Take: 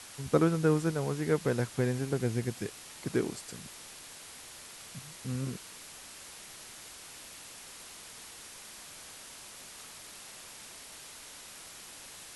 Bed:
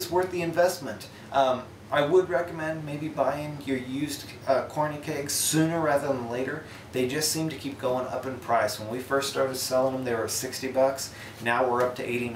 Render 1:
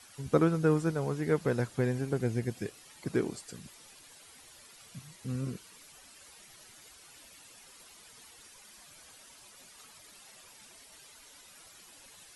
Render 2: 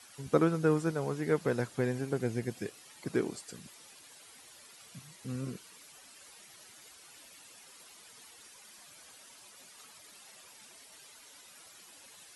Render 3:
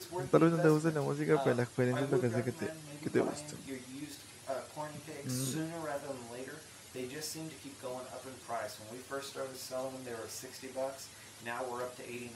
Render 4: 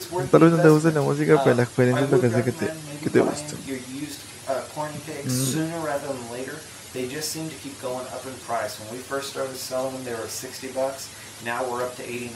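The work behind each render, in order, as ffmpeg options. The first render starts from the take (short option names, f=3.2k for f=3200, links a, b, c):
-af "afftdn=nr=11:nf=-49"
-af "highpass=f=160:p=1"
-filter_complex "[1:a]volume=-15dB[a];[0:a][a]amix=inputs=2:normalize=0"
-af "volume=12dB,alimiter=limit=-1dB:level=0:latency=1"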